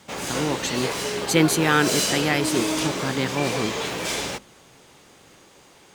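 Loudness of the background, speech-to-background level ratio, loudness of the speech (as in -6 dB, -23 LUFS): -26.0 LUFS, 2.0 dB, -24.0 LUFS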